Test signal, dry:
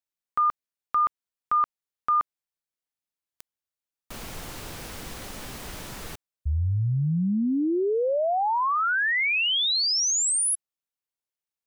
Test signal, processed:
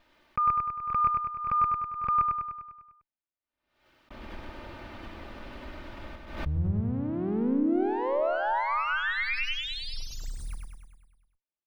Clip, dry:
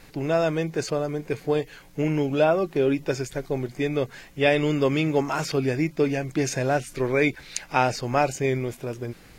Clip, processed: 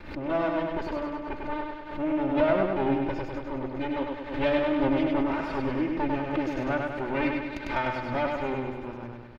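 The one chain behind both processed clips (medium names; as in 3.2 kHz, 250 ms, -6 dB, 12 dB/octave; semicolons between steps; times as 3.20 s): comb filter that takes the minimum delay 3.3 ms; distance through air 370 m; feedback delay 100 ms, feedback 58%, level -3.5 dB; swell ahead of each attack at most 81 dB/s; trim -2 dB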